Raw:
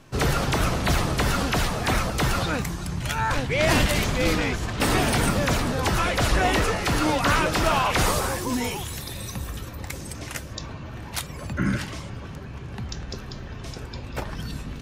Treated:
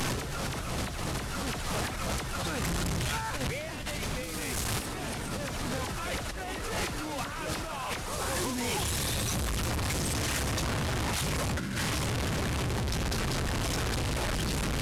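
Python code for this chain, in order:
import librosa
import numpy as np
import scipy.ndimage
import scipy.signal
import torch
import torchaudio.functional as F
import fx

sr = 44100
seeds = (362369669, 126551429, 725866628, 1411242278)

y = fx.delta_mod(x, sr, bps=64000, step_db=-21.5)
y = fx.high_shelf(y, sr, hz=7100.0, db=11.5, at=(4.23, 4.86))
y = fx.over_compress(y, sr, threshold_db=-27.0, ratio=-1.0)
y = 10.0 ** (-13.5 / 20.0) * np.tanh(y / 10.0 ** (-13.5 / 20.0))
y = F.gain(torch.from_numpy(y), -5.0).numpy()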